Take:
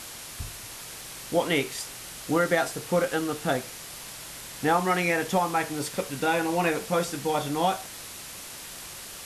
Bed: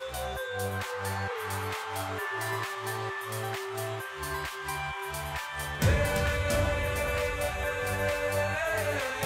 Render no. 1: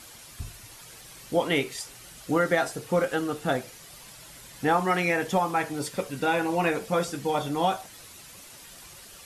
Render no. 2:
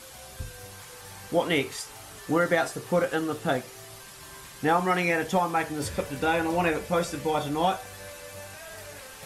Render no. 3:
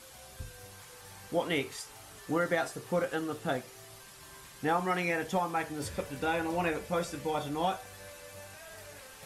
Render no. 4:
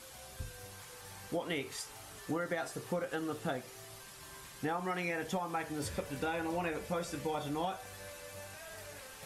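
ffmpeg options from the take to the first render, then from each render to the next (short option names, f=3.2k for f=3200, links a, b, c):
-af "afftdn=nr=9:nf=-41"
-filter_complex "[1:a]volume=-14.5dB[a];[0:a][a]amix=inputs=2:normalize=0"
-af "volume=-6dB"
-af "acompressor=threshold=-32dB:ratio=6"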